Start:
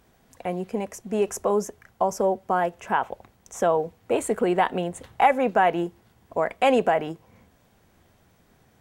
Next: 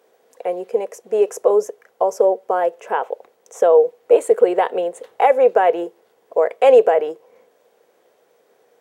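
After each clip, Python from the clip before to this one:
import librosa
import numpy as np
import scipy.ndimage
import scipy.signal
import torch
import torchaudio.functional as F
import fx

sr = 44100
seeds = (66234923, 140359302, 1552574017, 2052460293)

y = fx.highpass_res(x, sr, hz=470.0, q=5.6)
y = y * librosa.db_to_amplitude(-1.0)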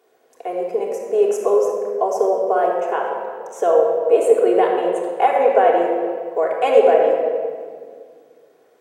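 y = fx.room_shoebox(x, sr, seeds[0], volume_m3=3300.0, walls='mixed', distance_m=3.3)
y = y * librosa.db_to_amplitude(-4.0)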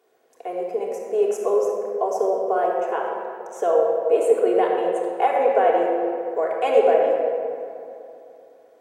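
y = fx.echo_bbd(x, sr, ms=127, stages=2048, feedback_pct=75, wet_db=-13.0)
y = y * librosa.db_to_amplitude(-4.0)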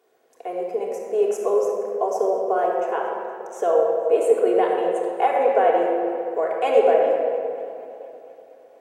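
y = fx.echo_warbled(x, sr, ms=232, feedback_pct=72, rate_hz=2.8, cents=104, wet_db=-22.5)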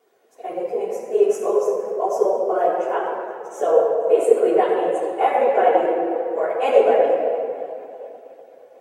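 y = fx.phase_scramble(x, sr, seeds[1], window_ms=50)
y = y * librosa.db_to_amplitude(1.5)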